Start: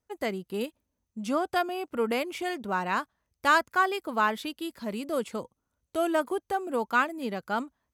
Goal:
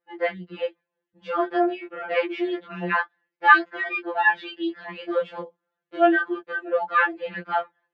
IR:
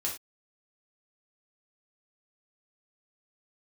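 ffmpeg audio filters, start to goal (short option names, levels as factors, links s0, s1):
-af "highpass=230,equalizer=f=280:t=q:w=4:g=-5,equalizer=f=430:t=q:w=4:g=10,equalizer=f=1700:t=q:w=4:g=10,lowpass=f=3300:w=0.5412,lowpass=f=3300:w=1.3066,flanger=delay=15:depth=7.7:speed=0.29,afftfilt=real='re*2.83*eq(mod(b,8),0)':imag='im*2.83*eq(mod(b,8),0)':win_size=2048:overlap=0.75,volume=2.66"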